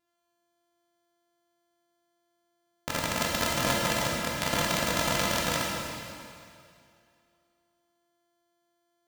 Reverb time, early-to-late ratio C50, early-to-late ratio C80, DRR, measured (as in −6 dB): 2.4 s, −1.0 dB, 0.5 dB, −3.5 dB